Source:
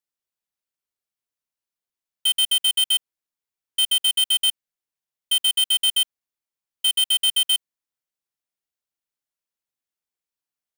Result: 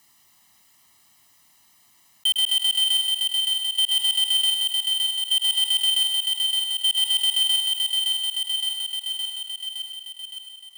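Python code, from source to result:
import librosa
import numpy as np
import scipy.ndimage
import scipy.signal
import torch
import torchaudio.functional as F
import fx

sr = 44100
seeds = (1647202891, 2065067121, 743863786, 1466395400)

p1 = scipy.signal.sosfilt(scipy.signal.butter(2, 84.0, 'highpass', fs=sr, output='sos'), x)
p2 = p1 + 0.91 * np.pad(p1, (int(1.0 * sr / 1000.0), 0))[:len(p1)]
p3 = p2 + fx.echo_feedback(p2, sr, ms=565, feedback_pct=51, wet_db=-10.0, dry=0)
p4 = fx.leveller(p3, sr, passes=2)
p5 = fx.echo_thinned(p4, sr, ms=105, feedback_pct=38, hz=190.0, wet_db=-12.0)
p6 = fx.env_flatten(p5, sr, amount_pct=50)
y = p6 * librosa.db_to_amplitude(-7.5)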